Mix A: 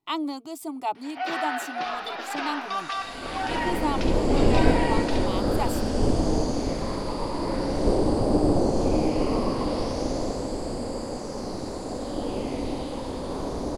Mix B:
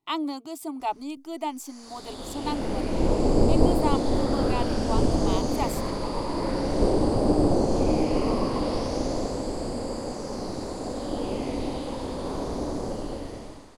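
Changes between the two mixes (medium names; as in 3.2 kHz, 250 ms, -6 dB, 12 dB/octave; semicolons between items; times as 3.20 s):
first sound: muted; second sound: entry -1.05 s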